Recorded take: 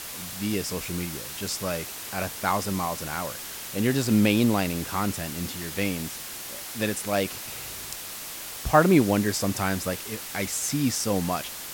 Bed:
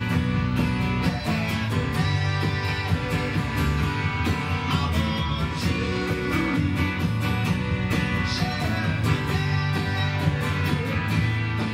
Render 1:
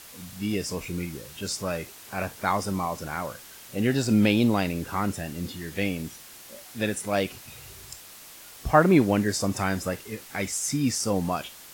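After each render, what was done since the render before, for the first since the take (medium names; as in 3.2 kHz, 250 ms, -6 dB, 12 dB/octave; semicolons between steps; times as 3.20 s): noise print and reduce 9 dB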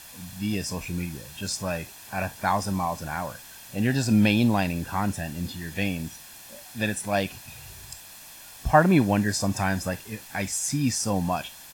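comb 1.2 ms, depth 49%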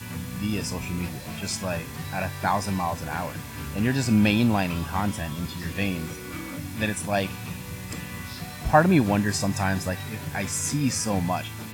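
add bed -12 dB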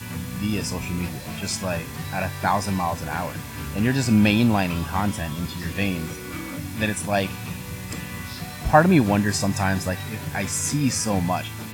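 trim +2.5 dB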